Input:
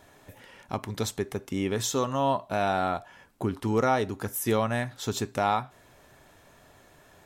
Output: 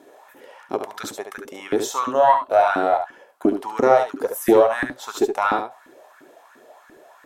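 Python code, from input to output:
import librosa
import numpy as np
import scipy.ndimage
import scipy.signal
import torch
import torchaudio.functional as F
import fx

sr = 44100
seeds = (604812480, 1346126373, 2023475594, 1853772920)

p1 = fx.filter_lfo_highpass(x, sr, shape='saw_up', hz=2.9, low_hz=270.0, high_hz=1700.0, q=5.5)
p2 = fx.tilt_eq(p1, sr, slope=-4.5)
p3 = fx.cheby_harmonics(p2, sr, harmonics=(2,), levels_db=(-15,), full_scale_db=-2.0)
p4 = fx.riaa(p3, sr, side='recording')
p5 = p4 + fx.echo_single(p4, sr, ms=71, db=-7.5, dry=0)
y = p5 * 10.0 ** (1.0 / 20.0)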